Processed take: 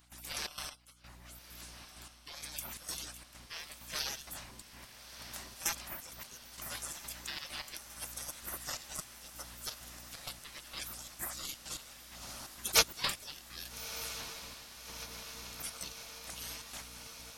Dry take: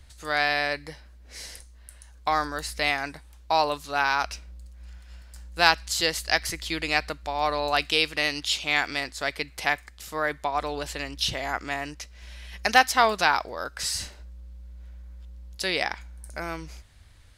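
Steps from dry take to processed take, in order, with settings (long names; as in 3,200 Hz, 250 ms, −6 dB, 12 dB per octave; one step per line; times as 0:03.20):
frequency inversion band by band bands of 500 Hz
gate on every frequency bin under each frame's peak −30 dB weak
high-shelf EQ 6,500 Hz +5.5 dB
harmonic and percussive parts rebalanced harmonic −7 dB
high-shelf EQ 2,600 Hz −6 dB
0:07.87–0:08.99: compressor whose output falls as the input rises −55 dBFS, ratio −0.5
mains hum 60 Hz, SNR 15 dB
gate pattern ".xxx.x...xxx" 130 BPM −12 dB
on a send: feedback delay with all-pass diffusion 1,289 ms, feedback 75%, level −11.5 dB
on the sum: level +14.5 dB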